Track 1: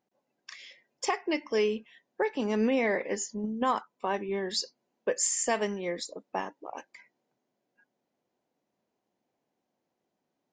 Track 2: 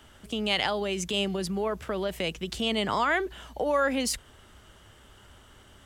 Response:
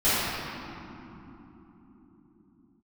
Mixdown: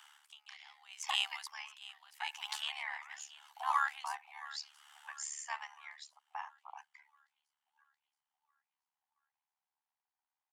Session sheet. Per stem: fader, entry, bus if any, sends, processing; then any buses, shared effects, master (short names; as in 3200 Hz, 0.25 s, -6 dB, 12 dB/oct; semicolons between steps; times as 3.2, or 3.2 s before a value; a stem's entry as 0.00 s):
-2.5 dB, 0.00 s, no send, no echo send, high shelf 3100 Hz -9.5 dB
+1.5 dB, 0.00 s, no send, echo send -17.5 dB, dB-linear tremolo 0.81 Hz, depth 29 dB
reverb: off
echo: feedback echo 0.677 s, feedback 54%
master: steep high-pass 790 Hz 96 dB/oct; AM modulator 73 Hz, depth 65%